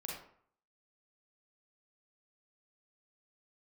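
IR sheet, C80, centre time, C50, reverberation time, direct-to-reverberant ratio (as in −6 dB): 6.0 dB, 50 ms, 1.0 dB, 0.60 s, −3.0 dB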